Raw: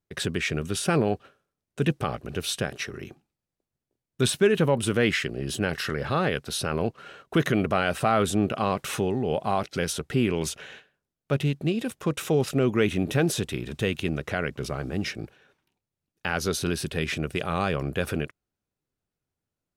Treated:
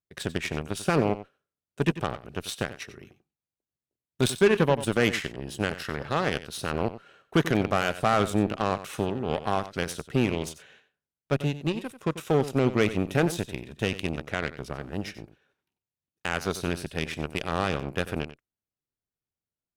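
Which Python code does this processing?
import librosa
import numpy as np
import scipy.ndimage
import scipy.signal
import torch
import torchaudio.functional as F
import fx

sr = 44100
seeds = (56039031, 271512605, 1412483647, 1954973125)

y = fx.cheby_harmonics(x, sr, harmonics=(7,), levels_db=(-20,), full_scale_db=-9.5)
y = y + 10.0 ** (-14.0 / 20.0) * np.pad(y, (int(92 * sr / 1000.0), 0))[:len(y)]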